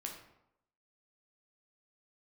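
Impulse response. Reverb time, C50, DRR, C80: 0.80 s, 5.5 dB, 0.5 dB, 8.5 dB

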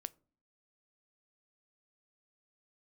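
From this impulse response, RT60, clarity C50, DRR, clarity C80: 0.45 s, 25.5 dB, 16.5 dB, 30.0 dB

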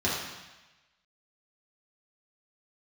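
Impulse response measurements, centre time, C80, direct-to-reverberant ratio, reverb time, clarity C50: 67 ms, 3.5 dB, −7.0 dB, 1.1 s, 1.0 dB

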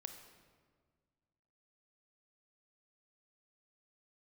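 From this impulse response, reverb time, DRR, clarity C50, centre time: 1.7 s, 6.0 dB, 7.5 dB, 27 ms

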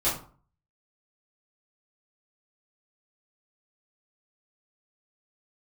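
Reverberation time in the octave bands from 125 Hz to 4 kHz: 0.60, 0.50, 0.45, 0.45, 0.35, 0.25 seconds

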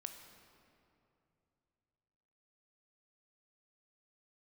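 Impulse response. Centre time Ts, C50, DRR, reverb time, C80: 40 ms, 6.5 dB, 5.5 dB, 2.8 s, 7.5 dB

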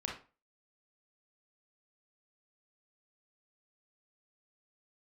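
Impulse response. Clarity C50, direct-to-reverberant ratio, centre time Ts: 5.0 dB, −1.0 dB, 32 ms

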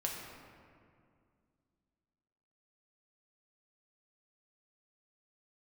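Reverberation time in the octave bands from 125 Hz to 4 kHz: 2.8, 3.0, 2.3, 2.1, 1.8, 1.2 seconds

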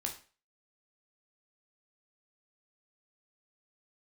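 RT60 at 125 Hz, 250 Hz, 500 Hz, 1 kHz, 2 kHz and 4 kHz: 0.40, 0.35, 0.40, 0.35, 0.35, 0.35 seconds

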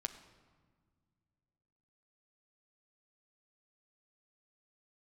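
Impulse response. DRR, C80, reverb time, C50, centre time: 7.5 dB, 12.5 dB, non-exponential decay, 11.0 dB, 12 ms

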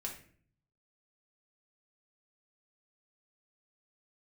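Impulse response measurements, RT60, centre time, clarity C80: 0.50 s, 21 ms, 12.0 dB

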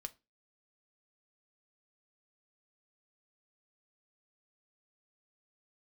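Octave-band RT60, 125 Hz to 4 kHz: 0.30, 0.35, 0.25, 0.25, 0.25, 0.25 seconds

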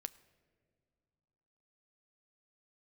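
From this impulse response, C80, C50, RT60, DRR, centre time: 20.0 dB, 19.0 dB, non-exponential decay, 13.5 dB, 3 ms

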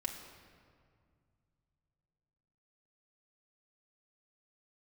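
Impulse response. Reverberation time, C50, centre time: 2.1 s, 6.5 dB, 38 ms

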